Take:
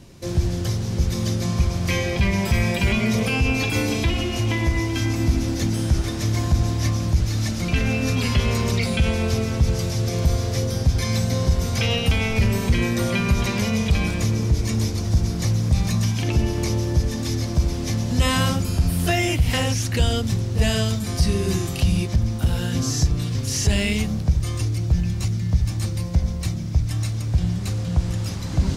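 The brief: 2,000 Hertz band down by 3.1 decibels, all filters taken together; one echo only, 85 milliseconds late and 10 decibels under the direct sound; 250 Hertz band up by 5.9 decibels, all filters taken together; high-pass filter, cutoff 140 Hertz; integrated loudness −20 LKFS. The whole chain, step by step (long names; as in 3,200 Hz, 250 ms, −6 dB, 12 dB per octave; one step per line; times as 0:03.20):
high-pass filter 140 Hz
parametric band 250 Hz +8.5 dB
parametric band 2,000 Hz −4 dB
single-tap delay 85 ms −10 dB
level +1.5 dB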